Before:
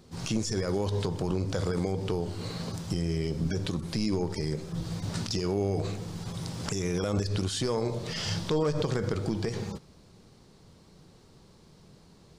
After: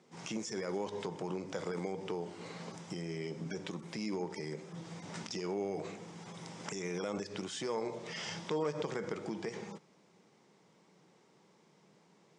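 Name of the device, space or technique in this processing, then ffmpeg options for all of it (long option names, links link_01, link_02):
television speaker: -af "highpass=frequency=180:width=0.5412,highpass=frequency=180:width=1.3066,equalizer=frequency=250:width_type=q:width=4:gain=-5,equalizer=frequency=890:width_type=q:width=4:gain=4,equalizer=frequency=2100:width_type=q:width=4:gain=6,equalizer=frequency=4300:width_type=q:width=4:gain=-9,lowpass=frequency=8100:width=0.5412,lowpass=frequency=8100:width=1.3066,volume=-6.5dB"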